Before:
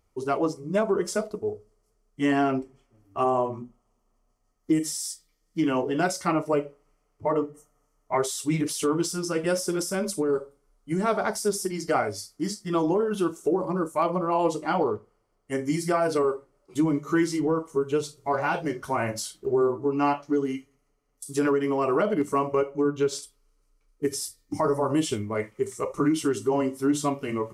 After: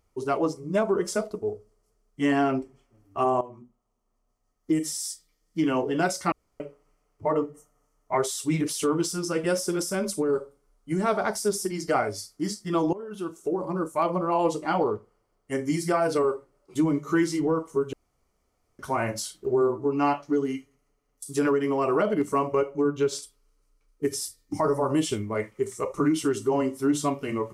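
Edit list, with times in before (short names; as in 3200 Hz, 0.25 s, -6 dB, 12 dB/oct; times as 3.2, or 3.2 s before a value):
3.41–5.04 fade in, from -14 dB
6.32–6.6 room tone
12.93–14.32 fade in equal-power, from -17.5 dB
17.93–18.79 room tone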